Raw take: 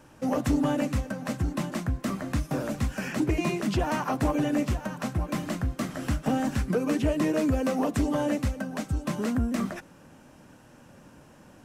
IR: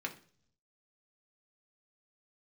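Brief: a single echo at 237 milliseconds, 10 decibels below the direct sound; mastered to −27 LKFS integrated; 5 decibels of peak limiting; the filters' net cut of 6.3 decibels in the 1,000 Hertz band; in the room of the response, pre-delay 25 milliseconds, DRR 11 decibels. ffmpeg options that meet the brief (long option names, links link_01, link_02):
-filter_complex "[0:a]equalizer=frequency=1000:width_type=o:gain=-8.5,alimiter=limit=-22dB:level=0:latency=1,aecho=1:1:237:0.316,asplit=2[link_01][link_02];[1:a]atrim=start_sample=2205,adelay=25[link_03];[link_02][link_03]afir=irnorm=-1:irlink=0,volume=-13dB[link_04];[link_01][link_04]amix=inputs=2:normalize=0,volume=4dB"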